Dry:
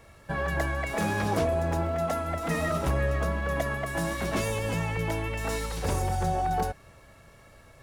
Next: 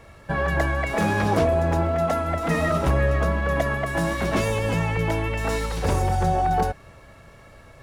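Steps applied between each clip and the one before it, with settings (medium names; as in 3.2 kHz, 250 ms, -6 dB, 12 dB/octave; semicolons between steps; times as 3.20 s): treble shelf 5.6 kHz -7.5 dB; trim +6 dB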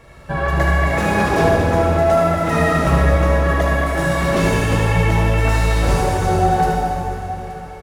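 on a send: multi-tap echo 75/875 ms -6.5/-16.5 dB; on the sum: plate-style reverb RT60 3.1 s, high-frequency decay 0.8×, DRR -3 dB; trim +1 dB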